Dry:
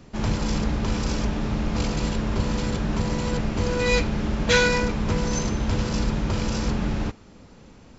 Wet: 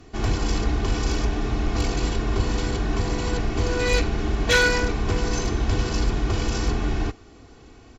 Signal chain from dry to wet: comb 2.7 ms, depth 68%; one-sided clip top -15 dBFS

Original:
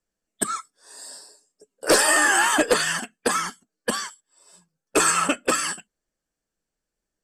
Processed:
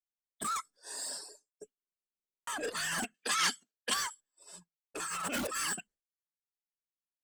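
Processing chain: 5.08–5.58 zero-crossing step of -29 dBFS; expander -51 dBFS; negative-ratio compressor -29 dBFS, ratio -1; reverb removal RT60 0.63 s; soft clip -27 dBFS, distortion -10 dB; 3.14–3.94 weighting filter D; stuck buffer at 1.73, samples 2048, times 15; gain -3.5 dB

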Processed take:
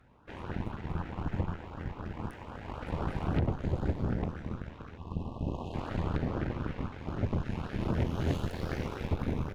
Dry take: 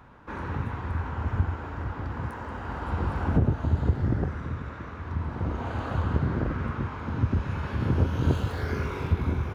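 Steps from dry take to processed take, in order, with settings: added harmonics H 8 -10 dB, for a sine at -11 dBFS; LFO notch saw up 3.9 Hz 910–2300 Hz; spectral delete 4.97–5.74, 1200–2500 Hz; on a send: reverb RT60 1.0 s, pre-delay 10 ms, DRR 19 dB; on the sum: gain -8.5 dB

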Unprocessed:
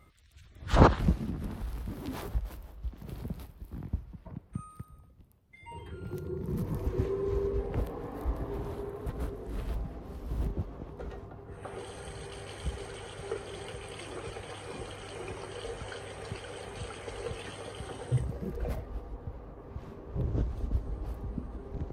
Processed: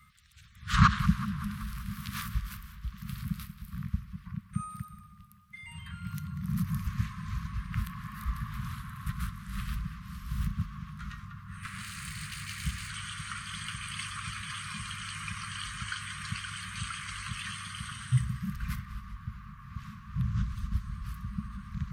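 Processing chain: 11.63–12.9 minimum comb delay 0.43 ms; Chebyshev band-stop 210–1100 Hz, order 5; low shelf 97 Hz -11.5 dB; in parallel at +1.5 dB: vocal rider within 4 dB 2 s; on the sum: tape echo 0.189 s, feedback 65%, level -13 dB, low-pass 4800 Hz

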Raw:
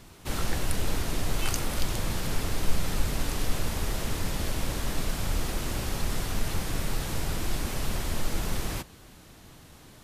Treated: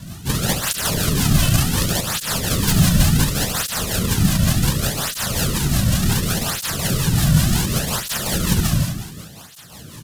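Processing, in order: spectral whitening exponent 0.6; resonant low shelf 230 Hz +12 dB, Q 1.5; companded quantiser 6-bit; on a send: reverse bouncing-ball echo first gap 70 ms, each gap 1.1×, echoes 5; on the sum: rotary speaker horn 5.5 Hz; bell 2200 Hz -6.5 dB 0.26 oct; in parallel at -3 dB: compressor, threshold -35 dBFS, peak gain reduction 27.5 dB; on the sum: tape flanging out of phase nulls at 0.68 Hz, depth 2.5 ms; gain +8.5 dB

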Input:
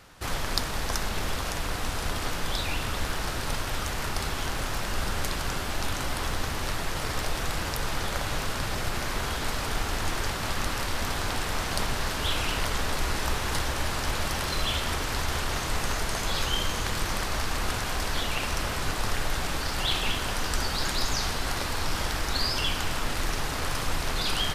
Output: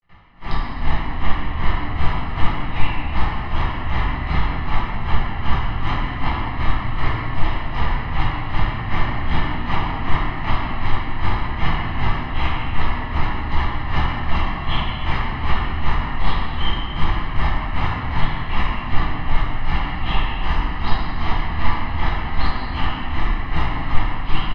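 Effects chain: LPF 3000 Hz 24 dB/oct; comb 1 ms, depth 66%; limiter -25.5 dBFS, peak gain reduction 13.5 dB; AGC gain up to 9 dB; grains 0.223 s, grains 2.6/s, pitch spread up and down by 0 st; pre-echo 72 ms -22 dB; reverb RT60 2.3 s, pre-delay 6 ms, DRR -7.5 dB

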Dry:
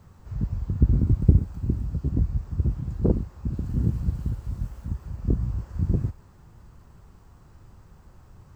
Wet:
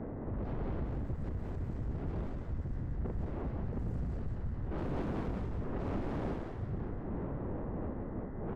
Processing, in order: reverse delay 0.488 s, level -7 dB; wind noise 370 Hz -26 dBFS; low-pass opened by the level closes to 730 Hz, open at -16.5 dBFS; compressor 5:1, threshold -32 dBFS, peak gain reduction 20.5 dB; buzz 120 Hz, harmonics 17, -62 dBFS -2 dB/oct; soft clip -34.5 dBFS, distortion -10 dB; on a send: frequency-shifting echo 0.181 s, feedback 49%, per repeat -56 Hz, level -4 dB; on the sum: gain +1 dB

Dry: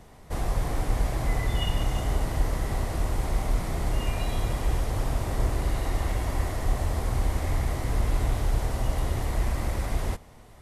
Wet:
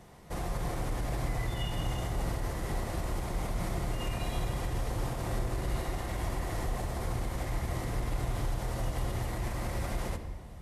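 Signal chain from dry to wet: HPF 55 Hz 6 dB/oct; limiter -23.5 dBFS, peak gain reduction 7.5 dB; shoebox room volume 2100 m³, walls mixed, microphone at 0.87 m; gain -2.5 dB

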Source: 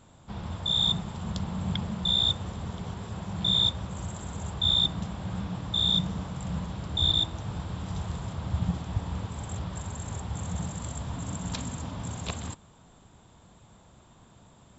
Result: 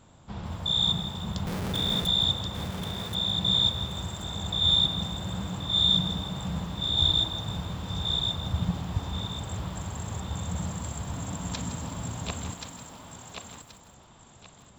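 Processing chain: 1.46–2.07 Schmitt trigger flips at -40 dBFS; on a send: thinning echo 1.079 s, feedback 29%, high-pass 420 Hz, level -4 dB; on the sum: lo-fi delay 0.163 s, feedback 55%, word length 8-bit, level -12 dB

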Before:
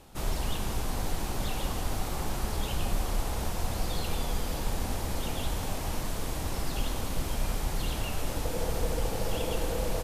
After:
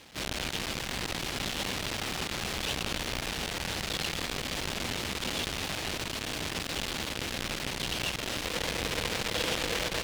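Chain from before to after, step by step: half-waves squared off; weighting filter D; echo with dull and thin repeats by turns 0.137 s, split 1700 Hz, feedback 73%, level -10.5 dB; gain -4.5 dB

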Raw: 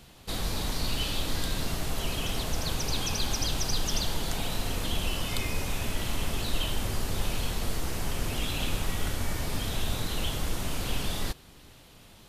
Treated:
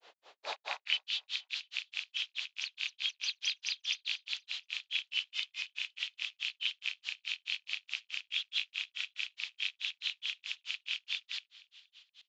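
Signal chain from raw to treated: rattling part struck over -31 dBFS, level -18 dBFS; three-band isolator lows -19 dB, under 540 Hz, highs -13 dB, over 4700 Hz; in parallel at -2.5 dB: limiter -25.5 dBFS, peak gain reduction 9 dB; on the sum: high-pass sweep 440 Hz -> 3100 Hz, 0.5–1.07; grains 0.145 s, grains 4.7/s, pitch spread up and down by 0 st; on a send: feedback echo 0.236 s, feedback 42%, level -21 dB; on the sum: downsampling 16000 Hz; gain -4 dB

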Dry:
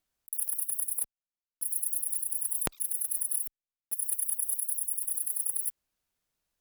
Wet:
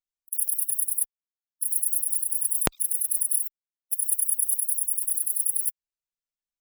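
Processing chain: per-bin expansion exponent 1.5; gain +9 dB

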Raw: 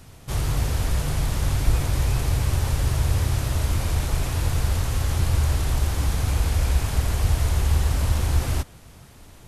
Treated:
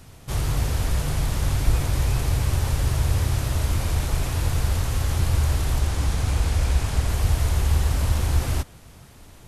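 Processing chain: 5.8–7.09 LPF 11000 Hz 12 dB/oct

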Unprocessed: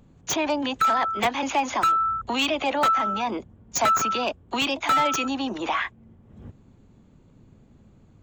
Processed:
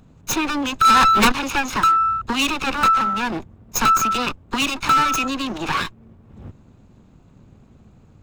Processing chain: minimum comb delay 0.77 ms; 0.85–1.32 sample leveller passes 3; gain +5 dB

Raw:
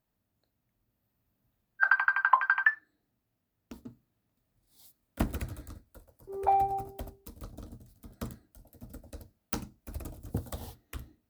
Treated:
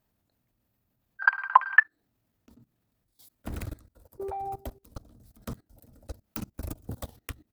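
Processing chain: tempo 1.5×; level quantiser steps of 21 dB; gain +8 dB

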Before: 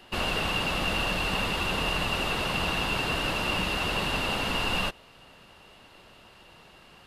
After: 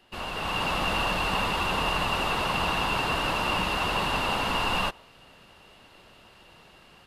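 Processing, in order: AGC gain up to 8 dB; dynamic EQ 980 Hz, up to +7 dB, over -39 dBFS, Q 1.5; gain -8.5 dB

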